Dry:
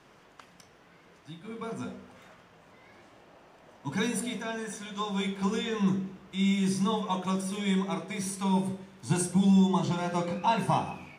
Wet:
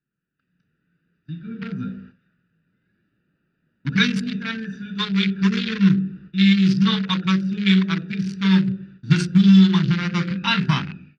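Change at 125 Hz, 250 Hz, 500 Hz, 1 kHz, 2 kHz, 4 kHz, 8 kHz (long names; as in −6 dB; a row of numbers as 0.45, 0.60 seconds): +11.0 dB, +10.5 dB, −2.5 dB, −0.5 dB, +13.0 dB, +13.0 dB, can't be measured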